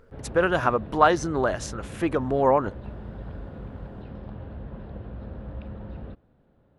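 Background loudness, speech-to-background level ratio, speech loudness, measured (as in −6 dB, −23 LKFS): −39.5 LKFS, 16.0 dB, −23.5 LKFS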